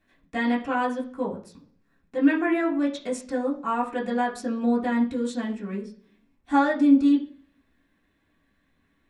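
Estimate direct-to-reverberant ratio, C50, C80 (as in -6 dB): -7.0 dB, 11.0 dB, 15.5 dB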